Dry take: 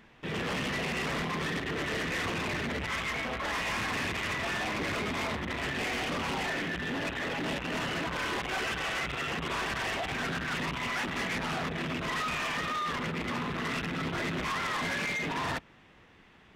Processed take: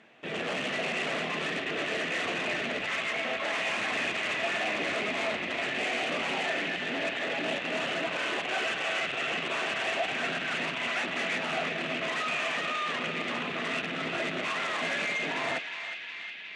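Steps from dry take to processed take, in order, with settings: cabinet simulation 230–8900 Hz, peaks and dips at 650 Hz +8 dB, 980 Hz -5 dB, 2.6 kHz +4 dB, 5.2 kHz -5 dB; band-passed feedback delay 363 ms, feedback 82%, band-pass 2.8 kHz, level -6 dB

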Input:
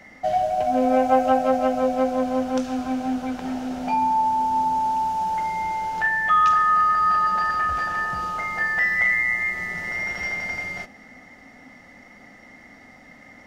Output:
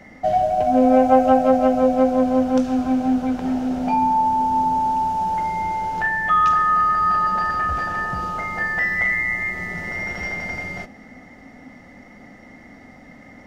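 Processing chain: tilt shelf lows +4.5 dB, about 740 Hz; trim +3 dB

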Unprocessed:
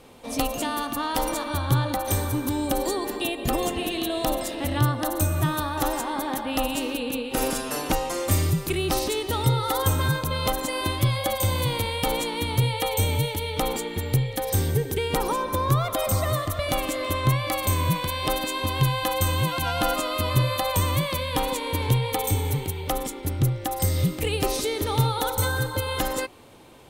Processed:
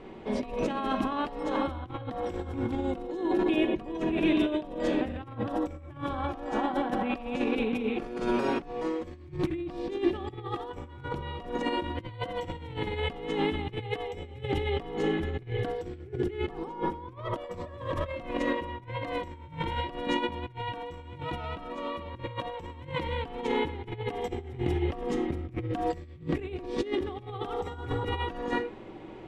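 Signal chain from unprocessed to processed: rattle on loud lows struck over -22 dBFS, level -30 dBFS; speed mistake 48 kHz file played as 44.1 kHz; low-pass 2.4 kHz 12 dB/octave; reverberation, pre-delay 5 ms, DRR 6.5 dB; compressor with a negative ratio -30 dBFS, ratio -0.5; peaking EQ 330 Hz +10 dB 0.42 oct; trim -3.5 dB

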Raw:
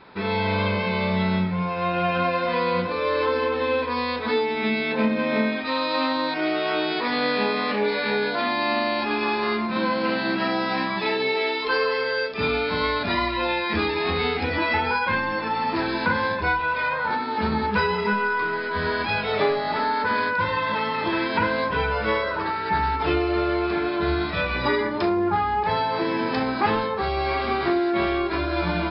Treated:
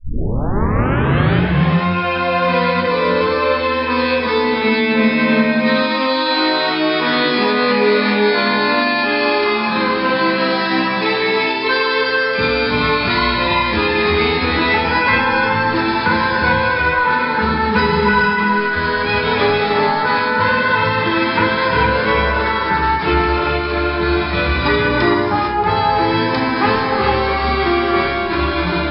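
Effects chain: tape start-up on the opening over 1.48 s; dynamic bell 690 Hz, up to -5 dB, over -42 dBFS, Q 2.9; gated-style reverb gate 480 ms rising, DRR -0.5 dB; trim +6 dB

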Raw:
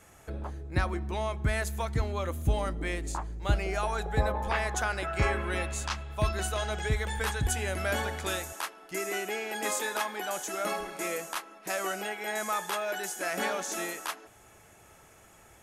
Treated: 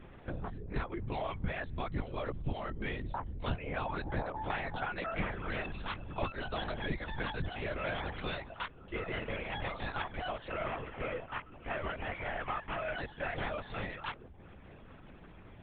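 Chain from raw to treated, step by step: 10.51–12.97 s: CVSD coder 16 kbps; mains buzz 120 Hz, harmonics 7, -52 dBFS -8 dB/octave; reverb removal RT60 0.59 s; compression 3:1, threshold -34 dBFS, peak gain reduction 10.5 dB; LPC vocoder at 8 kHz whisper

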